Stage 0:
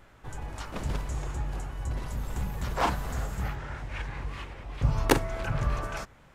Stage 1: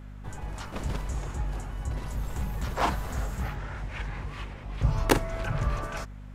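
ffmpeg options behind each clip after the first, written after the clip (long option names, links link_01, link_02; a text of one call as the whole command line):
ffmpeg -i in.wav -af "aeval=exprs='val(0)+0.00891*(sin(2*PI*50*n/s)+sin(2*PI*2*50*n/s)/2+sin(2*PI*3*50*n/s)/3+sin(2*PI*4*50*n/s)/4+sin(2*PI*5*50*n/s)/5)':channel_layout=same" out.wav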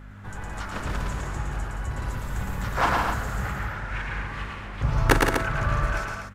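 ffmpeg -i in.wav -filter_complex "[0:a]equalizer=frequency=1500:width=1.4:gain=8,asplit=2[link_01][link_02];[link_02]aecho=0:1:110.8|169.1|244.9:0.708|0.447|0.447[link_03];[link_01][link_03]amix=inputs=2:normalize=0" out.wav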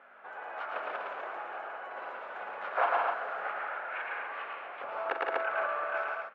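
ffmpeg -i in.wav -af "alimiter=limit=-15.5dB:level=0:latency=1:release=209,highpass=frequency=500:width=0.5412,highpass=frequency=500:width=1.3066,equalizer=frequency=680:width_type=q:width=4:gain=5,equalizer=frequency=980:width_type=q:width=4:gain=-4,equalizer=frequency=1900:width_type=q:width=4:gain=-7,lowpass=frequency=2500:width=0.5412,lowpass=frequency=2500:width=1.3066" out.wav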